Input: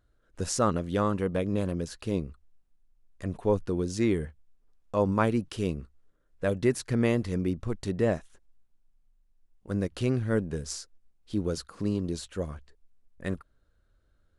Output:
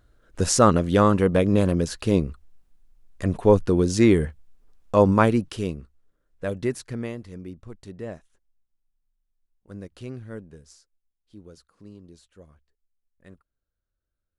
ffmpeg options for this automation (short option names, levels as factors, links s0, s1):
-af "volume=2.82,afade=t=out:st=4.97:d=0.81:silence=0.316228,afade=t=out:st=6.67:d=0.49:silence=0.375837,afade=t=out:st=10.21:d=0.56:silence=0.446684"